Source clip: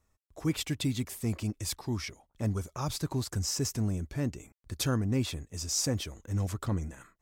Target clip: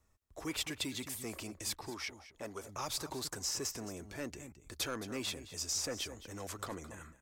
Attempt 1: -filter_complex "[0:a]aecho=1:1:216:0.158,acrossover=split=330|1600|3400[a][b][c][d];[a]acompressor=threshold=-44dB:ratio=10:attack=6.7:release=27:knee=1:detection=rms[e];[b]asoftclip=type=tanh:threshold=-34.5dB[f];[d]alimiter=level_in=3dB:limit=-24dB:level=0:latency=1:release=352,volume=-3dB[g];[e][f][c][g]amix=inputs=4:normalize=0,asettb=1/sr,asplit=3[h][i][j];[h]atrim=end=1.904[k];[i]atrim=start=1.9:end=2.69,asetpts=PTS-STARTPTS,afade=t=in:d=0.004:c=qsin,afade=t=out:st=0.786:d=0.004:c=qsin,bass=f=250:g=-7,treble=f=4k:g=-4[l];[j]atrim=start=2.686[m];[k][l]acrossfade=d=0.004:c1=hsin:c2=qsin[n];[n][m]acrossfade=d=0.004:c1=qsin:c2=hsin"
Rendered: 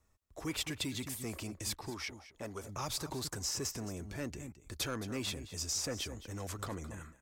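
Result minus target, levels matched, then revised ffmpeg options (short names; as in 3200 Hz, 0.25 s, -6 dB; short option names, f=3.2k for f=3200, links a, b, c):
compressor: peak gain reduction -7.5 dB
-filter_complex "[0:a]aecho=1:1:216:0.158,acrossover=split=330|1600|3400[a][b][c][d];[a]acompressor=threshold=-52.5dB:ratio=10:attack=6.7:release=27:knee=1:detection=rms[e];[b]asoftclip=type=tanh:threshold=-34.5dB[f];[d]alimiter=level_in=3dB:limit=-24dB:level=0:latency=1:release=352,volume=-3dB[g];[e][f][c][g]amix=inputs=4:normalize=0,asettb=1/sr,asplit=3[h][i][j];[h]atrim=end=1.904[k];[i]atrim=start=1.9:end=2.69,asetpts=PTS-STARTPTS,afade=t=in:d=0.004:c=qsin,afade=t=out:st=0.786:d=0.004:c=qsin,bass=f=250:g=-7,treble=f=4k:g=-4[l];[j]atrim=start=2.686[m];[k][l]acrossfade=d=0.004:c1=hsin:c2=qsin[n];[n][m]acrossfade=d=0.004:c1=qsin:c2=hsin"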